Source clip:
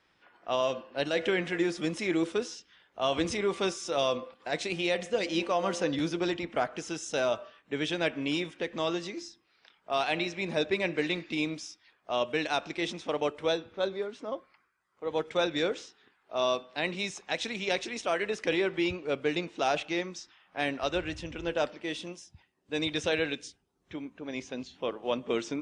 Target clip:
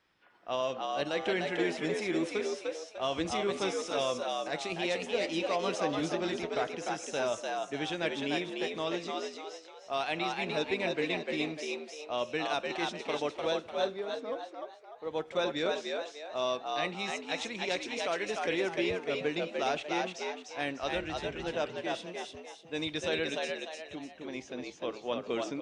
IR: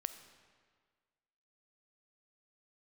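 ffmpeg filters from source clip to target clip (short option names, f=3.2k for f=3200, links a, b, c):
-filter_complex "[0:a]asplit=6[a][b][c][d][e][f];[b]adelay=299,afreqshift=75,volume=-3dB[g];[c]adelay=598,afreqshift=150,volume=-11.6dB[h];[d]adelay=897,afreqshift=225,volume=-20.3dB[i];[e]adelay=1196,afreqshift=300,volume=-28.9dB[j];[f]adelay=1495,afreqshift=375,volume=-37.5dB[k];[a][g][h][i][j][k]amix=inputs=6:normalize=0,volume=-4dB"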